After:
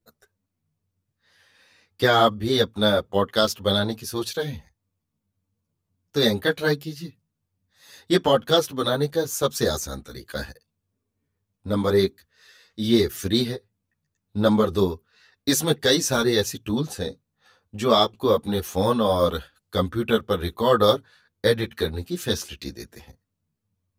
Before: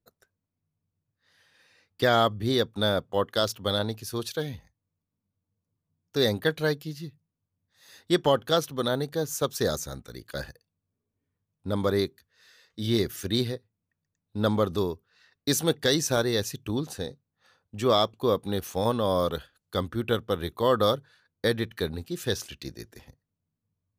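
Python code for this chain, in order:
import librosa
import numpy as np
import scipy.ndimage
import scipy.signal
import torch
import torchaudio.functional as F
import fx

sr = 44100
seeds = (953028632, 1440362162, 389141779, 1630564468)

y = fx.ensemble(x, sr)
y = F.gain(torch.from_numpy(y), 7.5).numpy()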